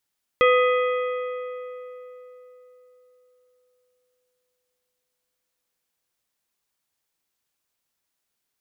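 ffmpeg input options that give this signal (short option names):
-f lavfi -i "aevalsrc='0.188*pow(10,-3*t/3.99)*sin(2*PI*500*t)+0.119*pow(10,-3*t/3.031)*sin(2*PI*1250*t)+0.075*pow(10,-3*t/2.632)*sin(2*PI*2000*t)+0.0473*pow(10,-3*t/2.462)*sin(2*PI*2500*t)+0.0299*pow(10,-3*t/2.276)*sin(2*PI*3250*t)':d=6.37:s=44100"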